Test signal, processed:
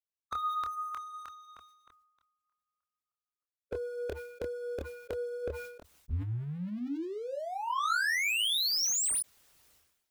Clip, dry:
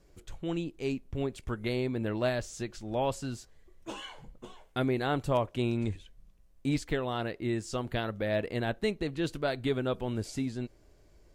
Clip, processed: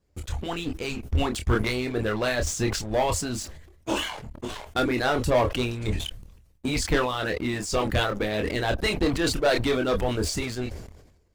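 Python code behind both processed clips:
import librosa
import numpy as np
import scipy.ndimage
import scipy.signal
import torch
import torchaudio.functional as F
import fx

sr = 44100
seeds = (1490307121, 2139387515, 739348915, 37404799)

y = fx.hpss(x, sr, part='harmonic', gain_db=-17)
y = fx.peak_eq(y, sr, hz=75.0, db=9.0, octaves=0.79)
y = fx.leveller(y, sr, passes=3)
y = fx.chorus_voices(y, sr, voices=6, hz=0.53, base_ms=26, depth_ms=2.4, mix_pct=35)
y = fx.sustainer(y, sr, db_per_s=60.0)
y = y * 10.0 ** (4.5 / 20.0)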